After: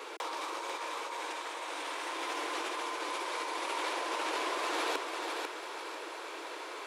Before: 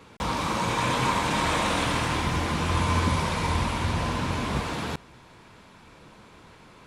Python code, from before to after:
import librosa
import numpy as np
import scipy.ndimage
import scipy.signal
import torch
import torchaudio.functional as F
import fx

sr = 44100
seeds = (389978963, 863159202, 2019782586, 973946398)

p1 = scipy.signal.sosfilt(scipy.signal.butter(12, 320.0, 'highpass', fs=sr, output='sos'), x)
p2 = fx.over_compress(p1, sr, threshold_db=-38.0, ratio=-1.0)
y = p2 + fx.echo_feedback(p2, sr, ms=495, feedback_pct=34, wet_db=-4.5, dry=0)